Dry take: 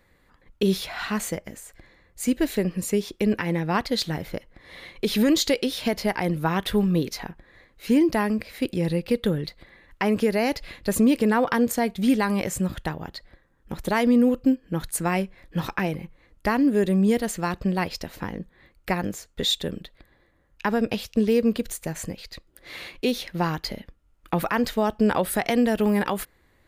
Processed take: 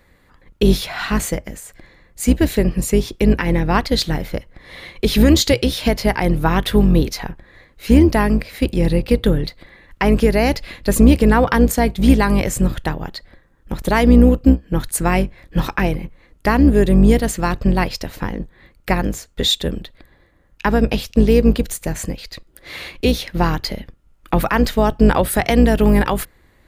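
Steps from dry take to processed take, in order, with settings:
sub-octave generator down 2 octaves, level 0 dB
level +6.5 dB

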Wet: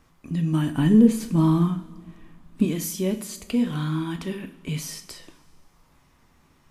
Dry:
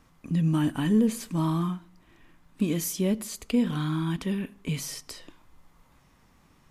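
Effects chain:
0:00.77–0:02.65: low-shelf EQ 400 Hz +9.5 dB
convolution reverb, pre-delay 3 ms, DRR 6.5 dB

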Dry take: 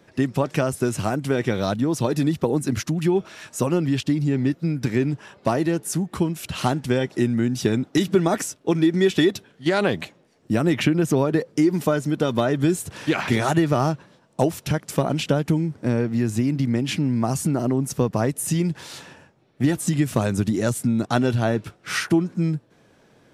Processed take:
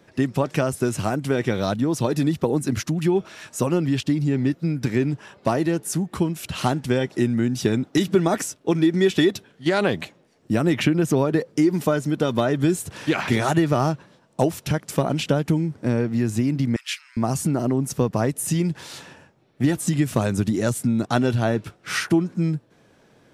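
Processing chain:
0:16.76–0:17.17: Butterworth high-pass 1,200 Hz 48 dB per octave

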